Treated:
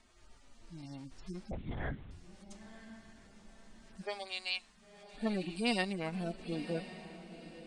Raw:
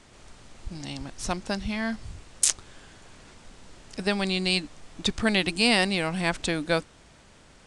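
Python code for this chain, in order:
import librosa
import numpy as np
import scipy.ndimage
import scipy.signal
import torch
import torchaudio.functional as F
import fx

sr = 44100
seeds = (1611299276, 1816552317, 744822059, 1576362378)

y = fx.hpss_only(x, sr, part='harmonic')
y = fx.highpass(y, sr, hz=fx.line((4.01, 420.0), (5.13, 1400.0)), slope=24, at=(4.01, 5.13), fade=0.02)
y = fx.echo_diffused(y, sr, ms=1015, feedback_pct=40, wet_db=-13.0)
y = fx.lpc_vocoder(y, sr, seeds[0], excitation='whisper', order=10, at=(1.51, 2.11))
y = fx.transient(y, sr, attack_db=-1, sustain_db=-5, at=(5.83, 6.37), fade=0.02)
y = y * 10.0 ** (-8.5 / 20.0)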